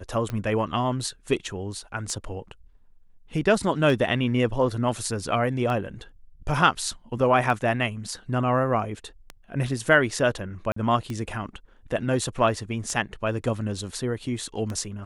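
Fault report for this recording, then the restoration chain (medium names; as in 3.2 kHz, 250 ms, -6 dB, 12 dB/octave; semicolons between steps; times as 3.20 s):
tick 33 1/3 rpm -18 dBFS
10.72–10.76 s: dropout 44 ms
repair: de-click; interpolate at 10.72 s, 44 ms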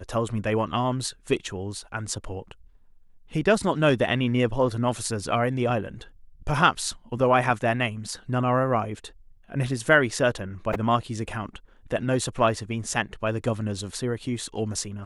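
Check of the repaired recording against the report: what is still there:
nothing left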